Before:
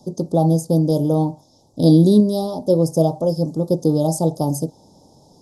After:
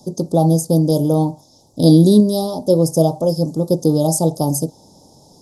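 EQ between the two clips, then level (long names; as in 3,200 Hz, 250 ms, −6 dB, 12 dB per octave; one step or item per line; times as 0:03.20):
high-shelf EQ 4,900 Hz +7.5 dB
+2.0 dB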